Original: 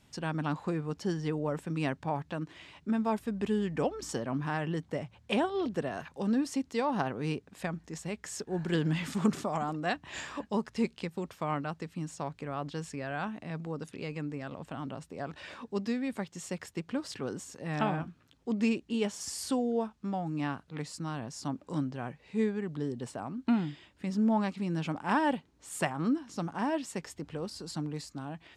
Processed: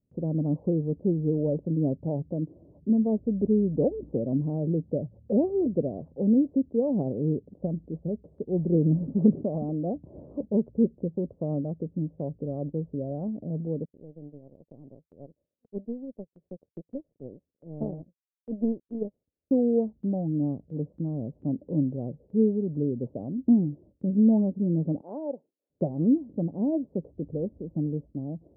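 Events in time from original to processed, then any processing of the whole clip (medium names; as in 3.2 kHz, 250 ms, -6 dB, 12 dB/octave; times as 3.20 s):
13.85–19.51 s: power-law waveshaper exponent 2
25.01–25.70 s: high-pass 650 Hz
whole clip: elliptic low-pass 570 Hz, stop band 70 dB; gate with hold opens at -55 dBFS; trim +7.5 dB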